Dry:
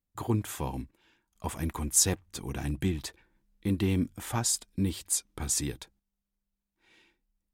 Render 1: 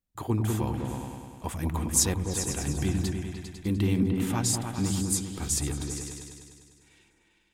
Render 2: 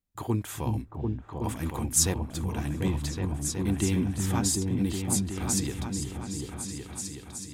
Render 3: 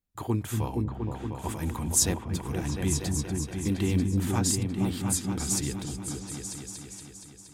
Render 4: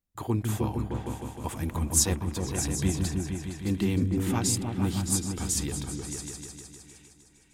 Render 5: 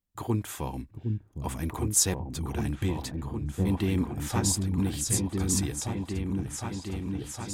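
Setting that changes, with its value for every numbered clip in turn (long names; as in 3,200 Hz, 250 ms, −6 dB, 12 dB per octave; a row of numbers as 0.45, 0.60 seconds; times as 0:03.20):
echo whose low-pass opens from repeat to repeat, delay time: 100, 371, 235, 154, 761 milliseconds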